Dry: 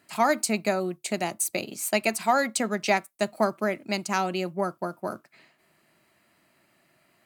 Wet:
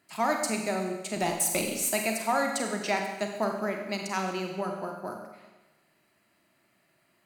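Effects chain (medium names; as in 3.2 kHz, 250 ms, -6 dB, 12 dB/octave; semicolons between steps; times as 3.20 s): 1.16–1.93 s: waveshaping leveller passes 2; Schroeder reverb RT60 1.1 s, combs from 32 ms, DRR 2.5 dB; trim -5.5 dB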